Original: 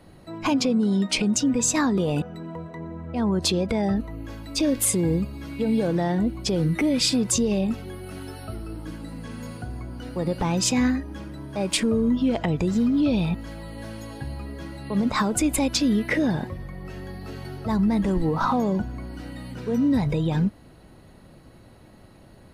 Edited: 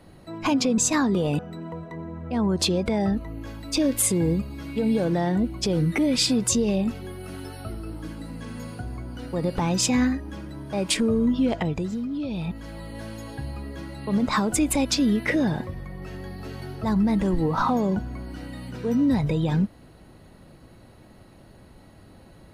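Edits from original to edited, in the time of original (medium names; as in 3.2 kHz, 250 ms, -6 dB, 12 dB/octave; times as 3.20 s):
0.78–1.61 s: delete
12.34–13.61 s: dip -8.5 dB, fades 0.48 s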